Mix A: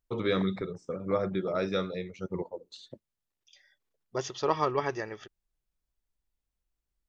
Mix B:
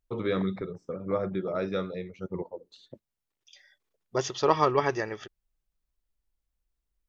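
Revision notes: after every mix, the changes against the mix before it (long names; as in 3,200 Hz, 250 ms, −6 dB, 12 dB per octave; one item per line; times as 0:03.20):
first voice: add low-pass filter 2,300 Hz 6 dB per octave
second voice +4.5 dB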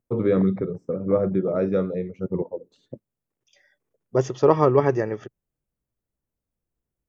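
second voice: add high-pass filter 63 Hz 24 dB per octave
master: add octave-band graphic EQ 125/250/500/4,000 Hz +10/+7/+7/−11 dB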